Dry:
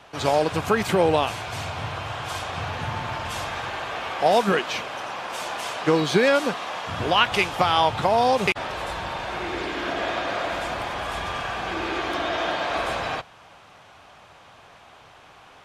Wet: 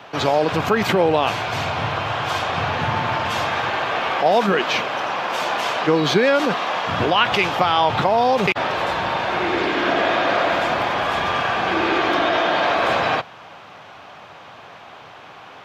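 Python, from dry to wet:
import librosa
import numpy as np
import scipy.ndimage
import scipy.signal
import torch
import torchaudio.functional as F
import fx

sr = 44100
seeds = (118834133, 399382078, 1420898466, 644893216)

p1 = scipy.signal.sosfilt(scipy.signal.butter(2, 120.0, 'highpass', fs=sr, output='sos'), x)
p2 = fx.peak_eq(p1, sr, hz=9400.0, db=-14.5, octaves=0.96)
p3 = fx.over_compress(p2, sr, threshold_db=-27.0, ratio=-0.5)
p4 = p2 + F.gain(torch.from_numpy(p3), -1.5).numpy()
y = F.gain(torch.from_numpy(p4), 2.0).numpy()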